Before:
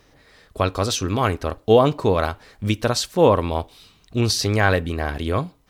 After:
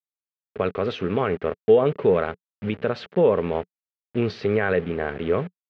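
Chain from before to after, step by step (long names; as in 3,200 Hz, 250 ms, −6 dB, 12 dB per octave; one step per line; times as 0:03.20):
hold until the input has moved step −31.5 dBFS
brickwall limiter −10.5 dBFS, peak gain reduction 7 dB
loudspeaker in its box 160–2,700 Hz, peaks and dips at 180 Hz +5 dB, 300 Hz −6 dB, 430 Hz +8 dB, 730 Hz −3 dB, 1,000 Hz −7 dB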